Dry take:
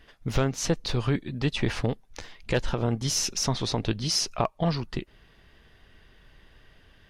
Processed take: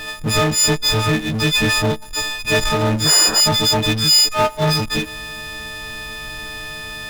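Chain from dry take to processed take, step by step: frequency quantiser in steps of 6 st; high shelf 6200 Hz -4 dB; power-law curve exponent 0.5; painted sound noise, 3.05–3.41, 300–1900 Hz -26 dBFS

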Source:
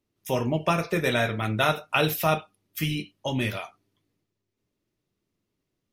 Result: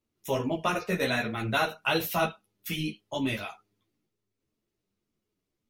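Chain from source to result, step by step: speed mistake 24 fps film run at 25 fps; ensemble effect

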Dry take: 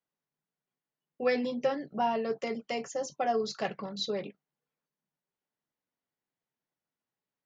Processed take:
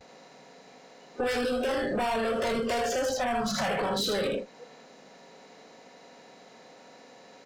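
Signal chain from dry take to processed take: per-bin compression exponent 0.4; 3.15–3.7 fifteen-band EQ 160 Hz +7 dB, 400 Hz -10 dB, 4000 Hz -6 dB; in parallel at -3.5 dB: sine folder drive 10 dB, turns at -12.5 dBFS; on the sum: gate with hold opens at -30 dBFS; on a send: feedback echo 79 ms, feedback 28%, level -3.5 dB; on the sum: soft clip -19.5 dBFS, distortion -9 dB; compressor 2.5:1, threshold -31 dBFS, peak gain reduction 7 dB; spectral noise reduction 17 dB; gain +1 dB

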